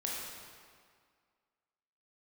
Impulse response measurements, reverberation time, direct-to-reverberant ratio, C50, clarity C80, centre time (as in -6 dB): 1.9 s, -4.0 dB, -1.0 dB, 0.5 dB, 110 ms